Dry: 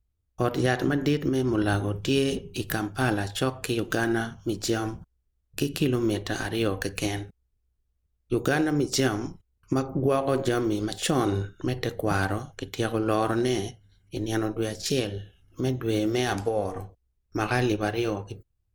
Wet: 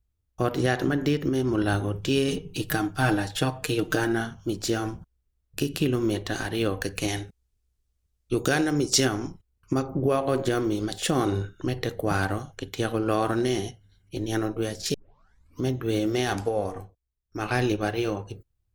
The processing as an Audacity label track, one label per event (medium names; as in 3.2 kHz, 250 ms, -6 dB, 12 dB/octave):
2.280000	4.070000	comb 6.5 ms, depth 63%
7.080000	9.050000	peaking EQ 6.7 kHz +7 dB 2.2 oct
14.940000	14.940000	tape start 0.69 s
16.670000	17.560000	dip -11 dB, fades 0.31 s